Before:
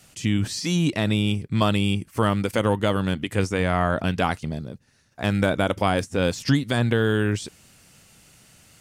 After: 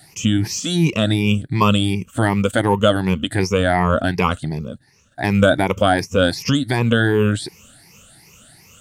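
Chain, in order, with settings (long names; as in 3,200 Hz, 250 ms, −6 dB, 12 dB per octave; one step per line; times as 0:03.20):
rippled gain that drifts along the octave scale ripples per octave 0.8, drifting +2.7 Hz, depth 17 dB
level +2.5 dB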